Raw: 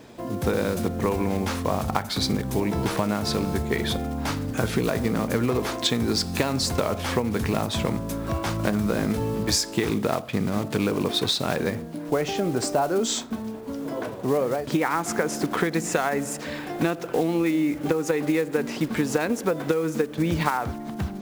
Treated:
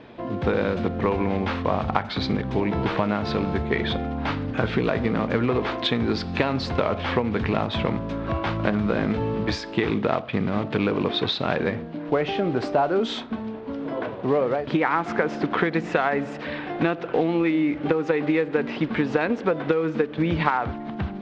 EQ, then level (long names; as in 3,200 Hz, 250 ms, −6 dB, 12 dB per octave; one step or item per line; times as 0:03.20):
low-pass filter 3,500 Hz 24 dB per octave
low-shelf EQ 450 Hz −3 dB
+3.0 dB